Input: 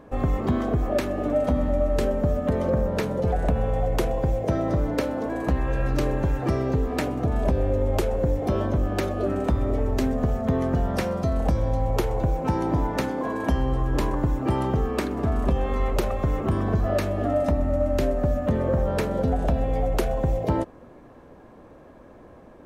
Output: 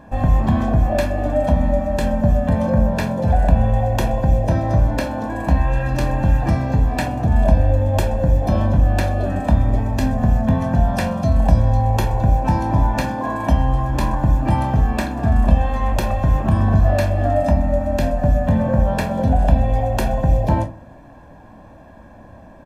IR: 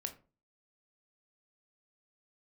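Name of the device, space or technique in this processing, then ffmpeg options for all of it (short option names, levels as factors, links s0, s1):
microphone above a desk: -filter_complex "[0:a]aecho=1:1:1.2:0.69[s0];[1:a]atrim=start_sample=2205[s1];[s0][s1]afir=irnorm=-1:irlink=0,volume=1.88"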